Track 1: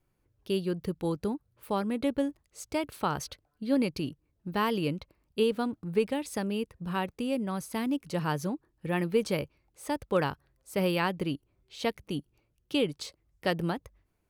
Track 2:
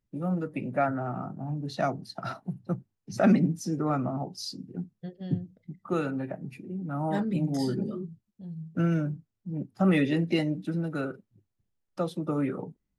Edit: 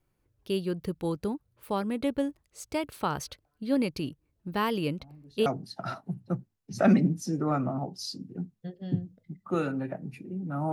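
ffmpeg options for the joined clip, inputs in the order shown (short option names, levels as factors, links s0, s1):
-filter_complex "[1:a]asplit=2[s0][s1];[0:a]apad=whole_dur=10.72,atrim=end=10.72,atrim=end=5.462[s2];[s1]atrim=start=1.848:end=7.11[s3];[s0]atrim=start=1.36:end=1.85,asetpts=PTS-STARTPTS,volume=0.126,afade=t=in:d=0.004:c=hsin,afade=t=out:st=0.486:d=0.004:c=hsin,adelay=219177S[s4];[s2][s3]acrossfade=d=0.004:c1=hsin:c2=hsin[s5];[s5][s4]amix=inputs=2:normalize=0"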